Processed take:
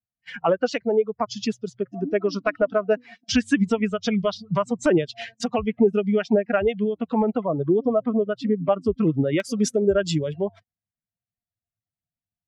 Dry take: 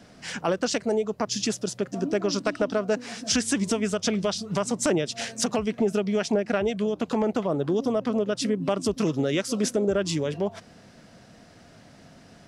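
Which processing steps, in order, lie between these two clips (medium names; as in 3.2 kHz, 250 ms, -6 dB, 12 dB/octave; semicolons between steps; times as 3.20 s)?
expander on every frequency bin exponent 2; low-pass 3.2 kHz 12 dB/octave, from 7.42 s 2 kHz, from 9.40 s 7.7 kHz; gate -50 dBFS, range -24 dB; trim +8.5 dB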